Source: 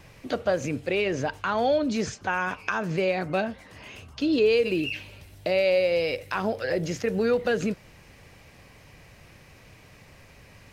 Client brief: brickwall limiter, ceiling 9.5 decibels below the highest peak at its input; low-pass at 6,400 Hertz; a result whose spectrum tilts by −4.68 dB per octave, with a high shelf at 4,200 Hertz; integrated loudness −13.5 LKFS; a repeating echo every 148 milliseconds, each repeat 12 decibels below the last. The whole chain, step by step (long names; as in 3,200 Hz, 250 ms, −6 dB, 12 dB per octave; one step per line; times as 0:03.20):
low-pass filter 6,400 Hz
high-shelf EQ 4,200 Hz −4 dB
brickwall limiter −22.5 dBFS
repeating echo 148 ms, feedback 25%, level −12 dB
level +18 dB